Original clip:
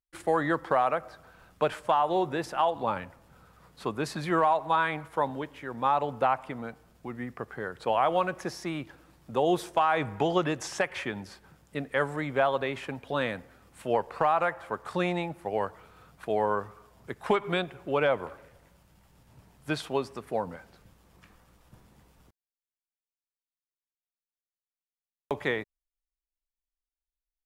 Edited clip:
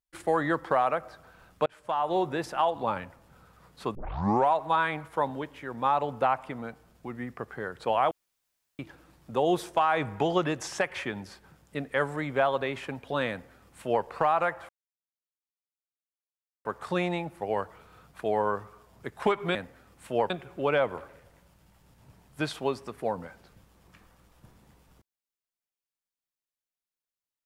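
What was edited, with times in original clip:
1.66–2.15 fade in
3.95 tape start 0.56 s
8.11–8.79 room tone
13.3–14.05 copy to 17.59
14.69 insert silence 1.96 s

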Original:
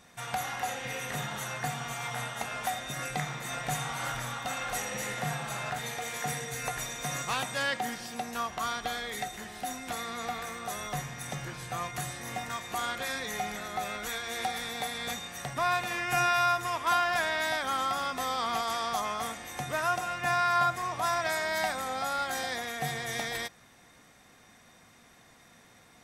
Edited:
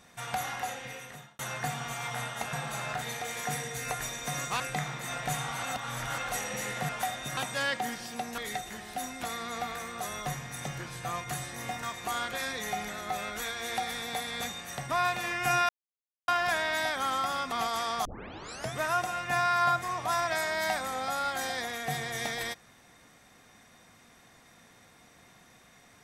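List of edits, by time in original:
0.49–1.39 fade out
2.53–3.01 swap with 5.3–7.37
4.04–4.59 reverse
8.38–9.05 cut
16.36–16.95 mute
18.19–18.46 cut
18.99 tape start 0.70 s

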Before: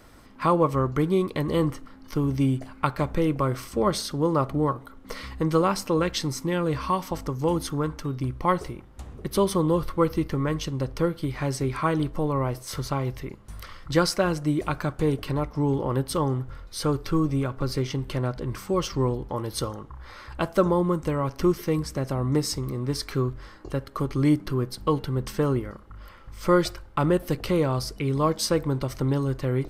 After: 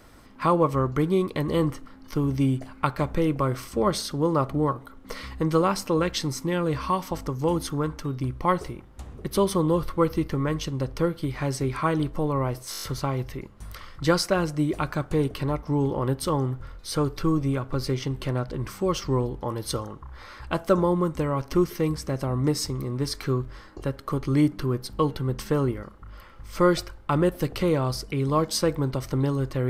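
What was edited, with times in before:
12.71 stutter 0.02 s, 7 plays

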